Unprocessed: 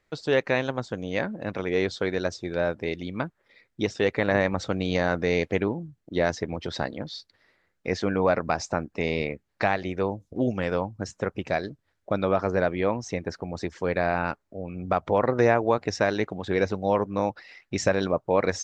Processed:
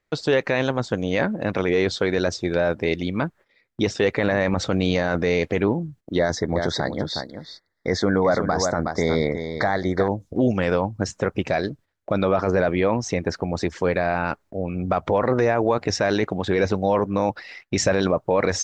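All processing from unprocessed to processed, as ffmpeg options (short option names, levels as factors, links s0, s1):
-filter_complex "[0:a]asettb=1/sr,asplit=3[s0][s1][s2];[s0]atrim=end=6.194[s3];[s1]atrim=start=6.19:end=10.08,asetpts=PTS-STARTPTS,afade=t=in:d=0.004:c=qsin,afade=t=out:st=3.886:d=0.004:c=qsin,asuperstop=centerf=2700:order=8:qfactor=2.2,aecho=1:1:365:0.299,atrim=end_sample=171549[s4];[s2]atrim=start=10.076[s5];[s3][s4]acrossfade=d=0.004:c1=hsin:c2=qsin[s6];[s6][s5]acrossfade=d=0.004:c1=qsin:c2=hsin,agate=range=0.224:threshold=0.00282:ratio=16:detection=peak,alimiter=limit=0.133:level=0:latency=1:release=12,volume=2.51"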